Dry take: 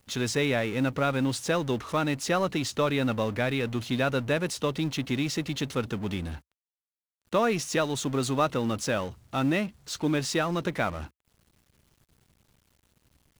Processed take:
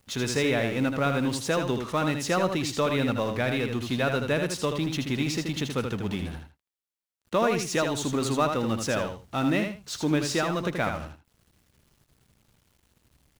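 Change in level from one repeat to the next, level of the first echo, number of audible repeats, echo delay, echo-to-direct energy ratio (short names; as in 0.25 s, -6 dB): -13.5 dB, -6.0 dB, 2, 79 ms, -6.0 dB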